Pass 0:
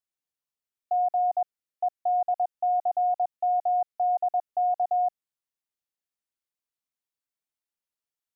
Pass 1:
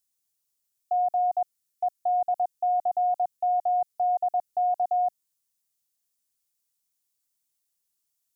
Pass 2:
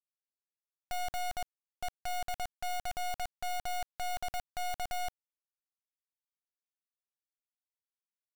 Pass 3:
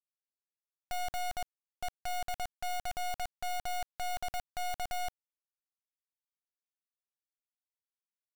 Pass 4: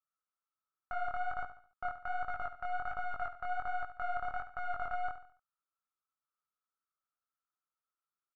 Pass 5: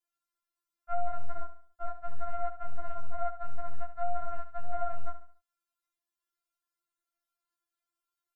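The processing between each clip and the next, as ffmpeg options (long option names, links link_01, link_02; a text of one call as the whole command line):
ffmpeg -i in.wav -af "bass=frequency=250:gain=6,treble=frequency=4000:gain=15" out.wav
ffmpeg -i in.wav -af "aeval=exprs='(tanh(35.5*val(0)+0.65)-tanh(0.65))/35.5':channel_layout=same,acrusher=bits=5:mix=0:aa=0.000001" out.wav
ffmpeg -i in.wav -af anull out.wav
ffmpeg -i in.wav -filter_complex "[0:a]flanger=delay=18.5:depth=6.9:speed=1.3,lowpass=frequency=1300:width_type=q:width=15,asplit=2[link_01][link_02];[link_02]aecho=0:1:71|142|213|284:0.266|0.106|0.0426|0.017[link_03];[link_01][link_03]amix=inputs=2:normalize=0,volume=-1.5dB" out.wav
ffmpeg -i in.wav -af "afftfilt=real='re*4*eq(mod(b,16),0)':imag='im*4*eq(mod(b,16),0)':win_size=2048:overlap=0.75,volume=6dB" out.wav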